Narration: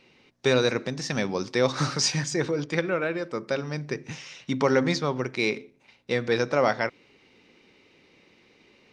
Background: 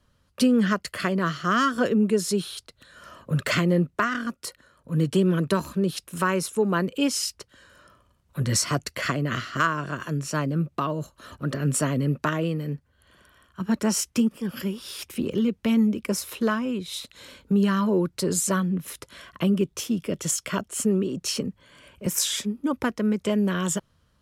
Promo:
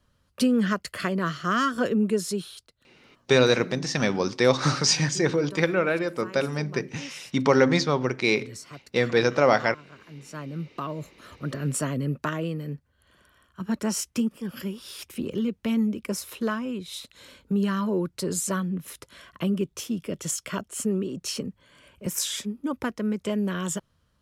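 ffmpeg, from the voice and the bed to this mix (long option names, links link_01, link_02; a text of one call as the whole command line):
ffmpeg -i stem1.wav -i stem2.wav -filter_complex "[0:a]adelay=2850,volume=3dB[link_01];[1:a]volume=13dB,afade=type=out:start_time=2.12:duration=0.8:silence=0.149624,afade=type=in:start_time=10.07:duration=1.07:silence=0.177828[link_02];[link_01][link_02]amix=inputs=2:normalize=0" out.wav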